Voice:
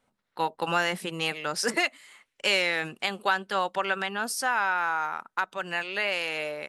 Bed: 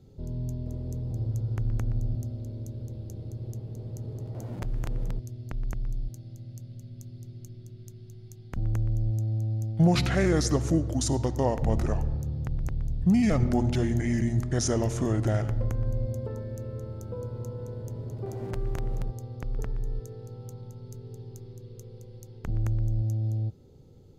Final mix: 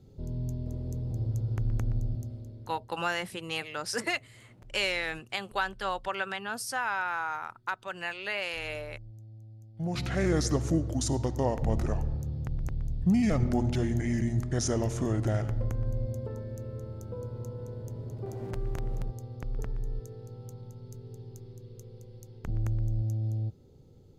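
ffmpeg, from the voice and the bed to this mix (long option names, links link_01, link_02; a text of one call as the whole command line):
ffmpeg -i stem1.wav -i stem2.wav -filter_complex "[0:a]adelay=2300,volume=-5dB[link_01];[1:a]volume=16.5dB,afade=type=out:start_time=1.93:duration=0.99:silence=0.112202,afade=type=in:start_time=9.73:duration=0.58:silence=0.133352[link_02];[link_01][link_02]amix=inputs=2:normalize=0" out.wav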